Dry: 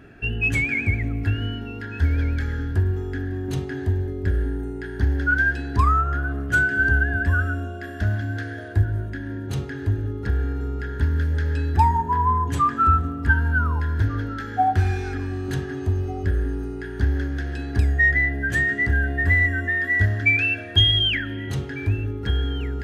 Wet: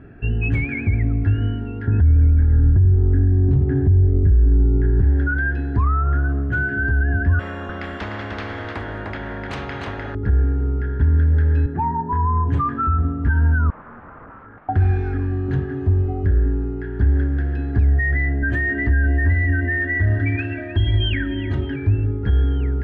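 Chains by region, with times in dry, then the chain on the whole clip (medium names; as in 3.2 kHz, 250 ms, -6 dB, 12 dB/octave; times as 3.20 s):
1.87–5.02 s: tilt EQ -3 dB/octave + three bands compressed up and down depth 40%
7.39–10.15 s: delay 302 ms -7 dB + spectrum-flattening compressor 10:1
11.66–12.13 s: high-pass 120 Hz 24 dB/octave + distance through air 410 m
13.70–14.69 s: bass shelf 360 Hz -7.5 dB + integer overflow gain 29 dB + four-pole ladder low-pass 1.6 kHz, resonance 45%
18.42–21.76 s: comb 3.2 ms, depth 84% + two-band feedback delay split 1.3 kHz, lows 170 ms, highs 309 ms, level -15 dB
whole clip: low-pass 1.9 kHz 12 dB/octave; peak limiter -15.5 dBFS; bass shelf 280 Hz +7.5 dB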